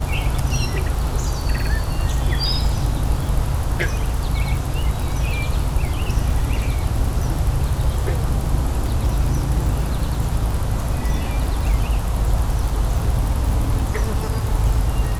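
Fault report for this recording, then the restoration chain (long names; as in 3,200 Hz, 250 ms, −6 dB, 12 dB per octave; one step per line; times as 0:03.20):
surface crackle 43 per second −24 dBFS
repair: click removal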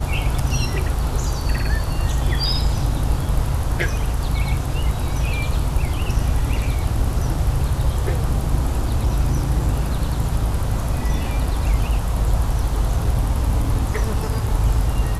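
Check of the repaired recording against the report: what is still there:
none of them is left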